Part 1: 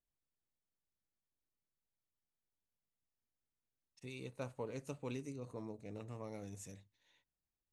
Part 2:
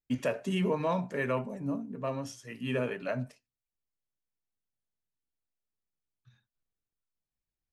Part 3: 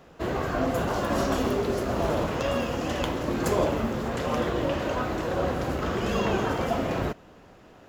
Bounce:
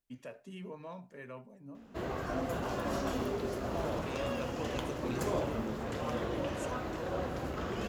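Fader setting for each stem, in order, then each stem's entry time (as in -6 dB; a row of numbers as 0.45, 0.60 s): +2.5, -16.0, -9.0 dB; 0.00, 0.00, 1.75 s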